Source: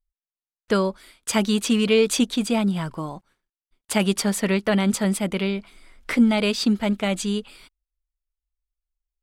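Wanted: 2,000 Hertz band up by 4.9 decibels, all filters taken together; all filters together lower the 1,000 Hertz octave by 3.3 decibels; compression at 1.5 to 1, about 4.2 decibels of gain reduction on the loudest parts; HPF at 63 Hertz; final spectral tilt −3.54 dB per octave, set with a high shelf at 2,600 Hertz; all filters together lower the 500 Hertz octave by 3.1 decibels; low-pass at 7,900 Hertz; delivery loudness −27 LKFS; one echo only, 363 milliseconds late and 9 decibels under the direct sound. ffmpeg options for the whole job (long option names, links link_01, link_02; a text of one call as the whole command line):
ffmpeg -i in.wav -af "highpass=63,lowpass=7900,equalizer=frequency=500:width_type=o:gain=-3,equalizer=frequency=1000:width_type=o:gain=-5.5,equalizer=frequency=2000:width_type=o:gain=4.5,highshelf=frequency=2600:gain=5.5,acompressor=threshold=-24dB:ratio=1.5,aecho=1:1:363:0.355,volume=-3dB" out.wav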